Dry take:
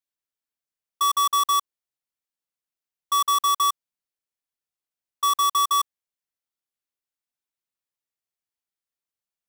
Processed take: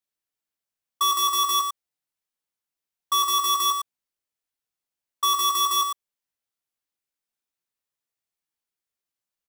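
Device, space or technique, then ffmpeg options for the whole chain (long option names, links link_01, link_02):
slapback doubling: -filter_complex "[0:a]asplit=3[link_01][link_02][link_03];[link_02]adelay=17,volume=-4dB[link_04];[link_03]adelay=111,volume=-7.5dB[link_05];[link_01][link_04][link_05]amix=inputs=3:normalize=0"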